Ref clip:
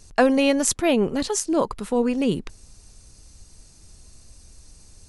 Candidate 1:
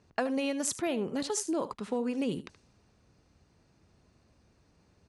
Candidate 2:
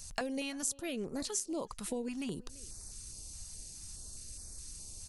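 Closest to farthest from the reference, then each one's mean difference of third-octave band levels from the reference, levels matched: 1, 2; 4.0 dB, 9.5 dB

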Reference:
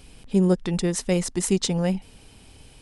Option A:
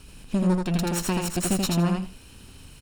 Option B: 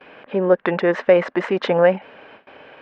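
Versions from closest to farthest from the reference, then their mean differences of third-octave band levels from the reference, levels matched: A, B; 6.5 dB, 9.0 dB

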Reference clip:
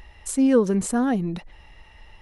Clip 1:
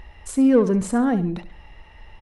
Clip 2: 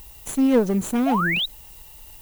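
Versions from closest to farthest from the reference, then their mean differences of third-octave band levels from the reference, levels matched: 1, 2; 2.0 dB, 6.0 dB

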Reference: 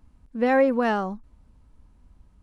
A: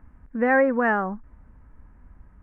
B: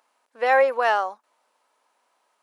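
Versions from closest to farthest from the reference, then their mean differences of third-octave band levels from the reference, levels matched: A, B; 3.0 dB, 4.5 dB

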